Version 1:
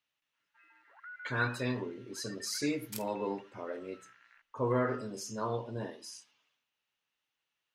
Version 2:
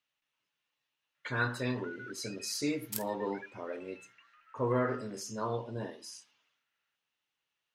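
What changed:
first sound: entry +0.80 s; second sound: add treble shelf 8.7 kHz +8.5 dB

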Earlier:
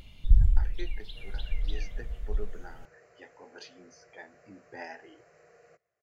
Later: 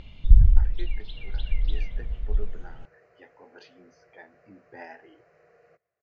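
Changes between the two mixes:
first sound +5.5 dB; master: add distance through air 180 m

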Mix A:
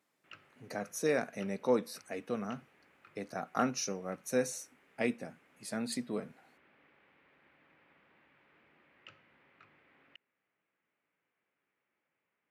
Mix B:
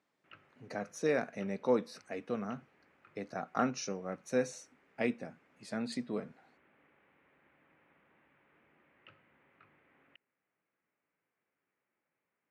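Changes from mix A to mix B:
background: add distance through air 230 m; master: add distance through air 86 m

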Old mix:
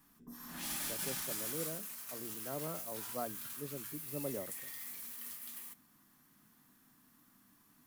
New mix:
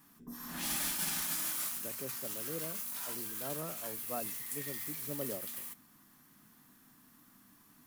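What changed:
speech: entry +0.95 s; background +4.5 dB

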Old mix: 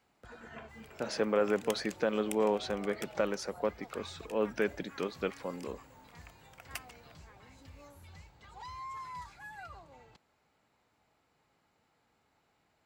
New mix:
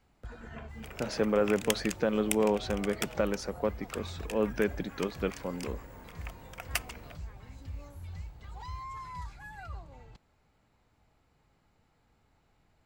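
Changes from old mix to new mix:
second sound +10.0 dB; master: remove high-pass 330 Hz 6 dB/octave

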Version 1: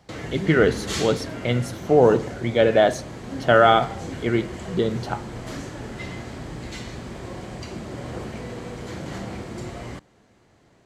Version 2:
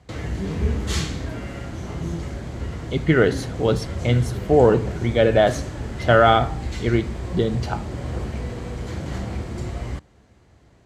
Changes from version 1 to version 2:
speech: entry +2.60 s; master: add peaking EQ 62 Hz +14.5 dB 1.4 oct

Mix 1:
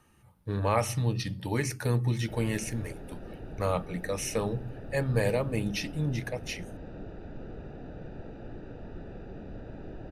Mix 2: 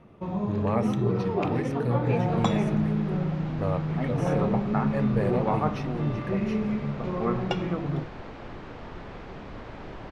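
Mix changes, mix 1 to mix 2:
first sound: unmuted; second sound: remove boxcar filter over 41 samples; master: add low-pass 1 kHz 6 dB/octave

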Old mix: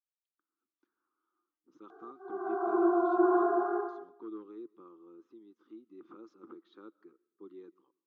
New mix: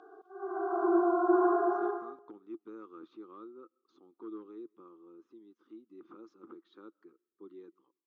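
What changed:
speech: send -6.0 dB; background: entry -1.90 s

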